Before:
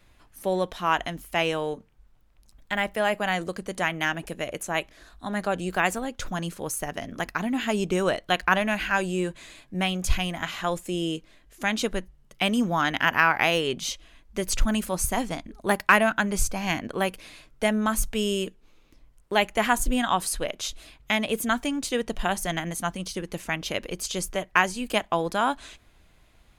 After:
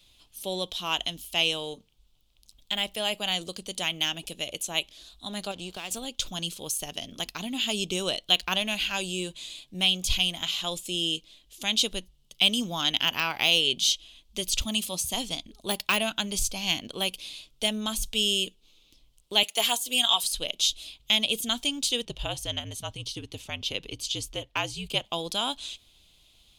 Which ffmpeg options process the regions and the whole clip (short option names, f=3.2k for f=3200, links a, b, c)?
-filter_complex "[0:a]asettb=1/sr,asplit=3[a][b][c];[a]atrim=end=5.514[d];[b]atrim=start=5.51:end=5.91,asetpts=PTS-STARTPTS,afade=t=in:d=0.004:c=qsin,afade=t=out:st=0.396:d=0.004:c=qsin,lowpass=f=3.8k:p=1,acompressor=threshold=-26dB:ratio=4:attack=3.2:release=140:knee=1:detection=peak,aeval=exprs='sgn(val(0))*max(abs(val(0))-0.00531,0)':c=same[e];[c]atrim=start=5.906[f];[d][e]acrossfade=d=0.004:c1=hsin:c2=qsin[g];[g][f]acrossfade=d=0.004:c1=qsin:c2=hsin,asettb=1/sr,asplit=3[h][i][j];[h]atrim=end=14.614[k];[i]atrim=start=14.61:end=15.14,asetpts=PTS-STARTPTS,afade=t=in:d=0.004:c=qsin,afade=t=out:st=0.526:d=0.004:c=qsin,highpass=77,equalizer=f=410:t=o:w=0.23:g=-4,bandreject=f=1.5k:w=7.1[l];[j]atrim=start=15.136[m];[k][l]acrossfade=d=0.004:c1=hsin:c2=qsin[n];[n][m]acrossfade=d=0.004:c1=qsin:c2=hsin,asettb=1/sr,asplit=3[o][p][q];[o]atrim=end=19.434[r];[p]atrim=start=19.43:end=20.24,asetpts=PTS-STARTPTS,afade=t=in:d=0.004:c=qsin,afade=t=out:st=0.806:d=0.004:c=qsin,highpass=450,highshelf=f=9.3k:g=9.5,aecho=1:1:4.4:0.78,atrim=end_sample=35721[s];[q]atrim=start=20.236[t];[r][s]acrossfade=d=0.004:c1=hsin:c2=qsin[u];[u][t]acrossfade=d=0.004:c1=qsin:c2=hsin,asettb=1/sr,asplit=3[v][w][x];[v]atrim=end=22.054[y];[w]atrim=start=22.05:end=25.05,asetpts=PTS-STARTPTS,afade=t=in:d=0.004:c=qsin,afade=t=out:st=2.996:d=0.004:c=qsin,highshelf=f=3.8k:g=-11.5,afreqshift=-65[z];[x]atrim=start=25.046[aa];[y][z]acrossfade=d=0.004:c1=hsin:c2=qsin[ab];[ab][aa]acrossfade=d=0.004:c1=qsin:c2=hsin,deesser=0.5,highshelf=f=2.4k:t=q:w=3:g=11,volume=-7dB"